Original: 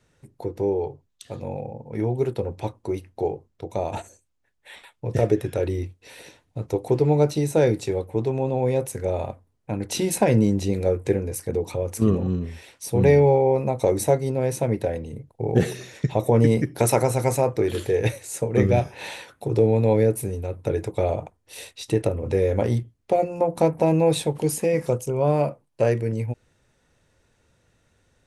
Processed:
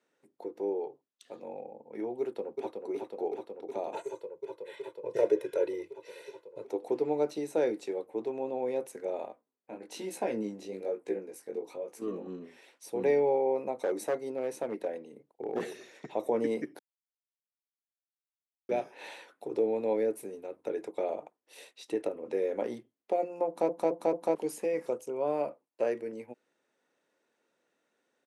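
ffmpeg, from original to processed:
-filter_complex "[0:a]asplit=2[a][b];[b]afade=t=in:st=2.2:d=0.01,afade=t=out:st=2.8:d=0.01,aecho=0:1:370|740|1110|1480|1850|2220|2590|2960|3330|3700|4070|4440:0.595662|0.506313|0.430366|0.365811|0.310939|0.264298|0.224654|0.190956|0.162312|0.137965|0.117271|0.09968[c];[a][c]amix=inputs=2:normalize=0,asettb=1/sr,asplit=3[d][e][f];[d]atrim=end=3.944[g];[e]atrim=start=3.94:end=6.65,asetpts=PTS-STARTPTS,afade=t=in:d=0.004:c=qsin,afade=t=out:st=2.706:d=0.004:c=qsin,aecho=1:1:2:0.94,atrim=end_sample=119511[h];[f]atrim=start=6.646[i];[g][h]acrossfade=d=0.004:c1=hsin:c2=qsin[j];[j][i]acrossfade=d=0.004:c1=qsin:c2=hsin,asettb=1/sr,asplit=3[k][l][m];[k]atrim=end=9.284[n];[l]atrim=start=9.28:end=12.27,asetpts=PTS-STARTPTS,afade=t=in:d=0.004:c=qsin,afade=t=out:st=2.986:d=0.004:c=qsin,flanger=delay=15.5:depth=6.8:speed=1.1[o];[m]atrim=start=12.266[p];[n][o]acrossfade=d=0.004:c1=hsin:c2=qsin[q];[q][p]acrossfade=d=0.004:c1=qsin:c2=hsin,asettb=1/sr,asplit=3[r][s][t];[r]atrim=end=13.764[u];[s]atrim=start=13.76:end=16.08,asetpts=PTS-STARTPTS,afade=t=in:d=0.004:c=qsin,afade=t=out:st=2.316:d=0.004:c=qsin,volume=15dB,asoftclip=hard,volume=-15dB[v];[t]atrim=start=16.076[w];[u][v]acrossfade=d=0.004:c1=hsin:c2=qsin[x];[x][w]acrossfade=d=0.004:c1=qsin:c2=hsin,asplit=7[y][z][aa][ab][ac][ad][ae];[y]atrim=end=16.79,asetpts=PTS-STARTPTS,afade=t=out:st=16.786:d=0.004:c=hsin[af];[z]atrim=start=16.79:end=18.69,asetpts=PTS-STARTPTS,volume=0[ag];[aa]atrim=start=18.69:end=23.692,asetpts=PTS-STARTPTS,afade=t=in:d=0.004:c=hsin[ah];[ab]atrim=start=23.468:end=23.692[ai];[ac]atrim=start=23.468:end=23.692[aj];[ad]atrim=start=23.468:end=23.692[ak];[ae]atrim=start=24.348[al];[af][ag][ah]concat=n=3:v=0:a=1[am];[am][ai]acrossfade=d=0.004:c1=hsin:c2=hsin[an];[an][aj]acrossfade=d=0.004:c1=hsin:c2=hsin[ao];[ao][ak]acrossfade=d=0.004:c1=hsin:c2=hsin[ap];[ap][al]acrossfade=d=0.004:c1=hsin:c2=hsin,highpass=f=260:w=0.5412,highpass=f=260:w=1.3066,highshelf=f=3.8k:g=-7.5,volume=-8.5dB"

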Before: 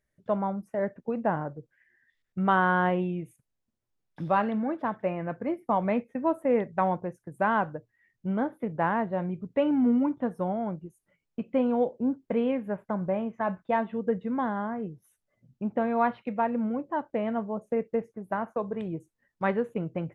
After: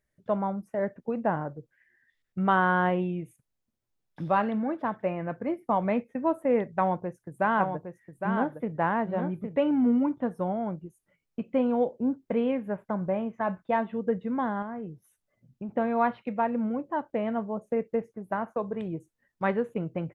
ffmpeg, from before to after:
-filter_complex "[0:a]asplit=3[a][b][c];[a]afade=t=out:st=7.44:d=0.02[d];[b]aecho=1:1:811:0.473,afade=t=in:st=7.44:d=0.02,afade=t=out:st=9.55:d=0.02[e];[c]afade=t=in:st=9.55:d=0.02[f];[d][e][f]amix=inputs=3:normalize=0,asettb=1/sr,asplit=3[g][h][i];[g]atrim=end=14.624[j];[h]atrim=start=14.62:end=15.69,asetpts=PTS-STARTPTS,afade=t=in:d=0.004:c=qsin,afade=t=out:st=1.066:d=0.004:c=qsin,acompressor=threshold=-33dB:ratio=4:attack=3.2:release=140:knee=1:detection=peak[k];[i]atrim=start=15.686[l];[j][k]acrossfade=d=0.004:c1=hsin:c2=qsin[m];[m][l]acrossfade=d=0.004:c1=qsin:c2=hsin"

